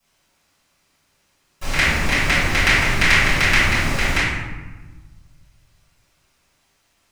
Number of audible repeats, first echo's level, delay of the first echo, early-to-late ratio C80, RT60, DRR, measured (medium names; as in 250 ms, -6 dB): no echo, no echo, no echo, 1.5 dB, 1.2 s, -14.5 dB